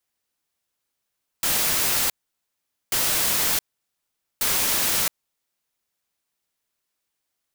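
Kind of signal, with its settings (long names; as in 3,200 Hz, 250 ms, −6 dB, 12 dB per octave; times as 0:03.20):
noise bursts white, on 0.67 s, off 0.82 s, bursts 3, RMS −22 dBFS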